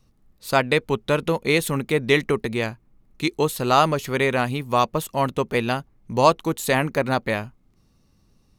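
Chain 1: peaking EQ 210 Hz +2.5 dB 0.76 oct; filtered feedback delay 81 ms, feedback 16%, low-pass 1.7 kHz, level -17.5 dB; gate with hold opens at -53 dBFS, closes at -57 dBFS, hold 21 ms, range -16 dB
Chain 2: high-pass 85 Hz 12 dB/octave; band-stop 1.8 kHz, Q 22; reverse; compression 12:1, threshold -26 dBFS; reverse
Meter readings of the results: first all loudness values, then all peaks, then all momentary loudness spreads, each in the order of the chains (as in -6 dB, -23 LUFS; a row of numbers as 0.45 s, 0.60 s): -22.0 LUFS, -32.0 LUFS; -2.0 dBFS, -14.0 dBFS; 8 LU, 4 LU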